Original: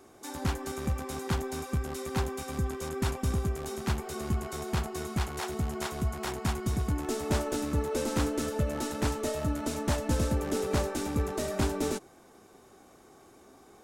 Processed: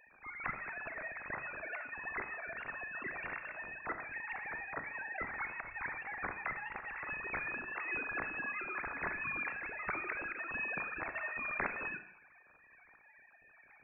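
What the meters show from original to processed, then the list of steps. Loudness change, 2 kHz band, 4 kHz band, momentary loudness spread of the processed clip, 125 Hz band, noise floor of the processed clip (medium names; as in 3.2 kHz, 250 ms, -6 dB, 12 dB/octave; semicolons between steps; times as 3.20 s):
-7.5 dB, +5.5 dB, under -30 dB, 5 LU, -26.0 dB, -63 dBFS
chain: formants replaced by sine waves; high-pass 1.4 kHz 12 dB/octave; Schroeder reverb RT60 0.63 s, combs from 29 ms, DRR 9 dB; frequency inversion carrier 3 kHz; trim +2.5 dB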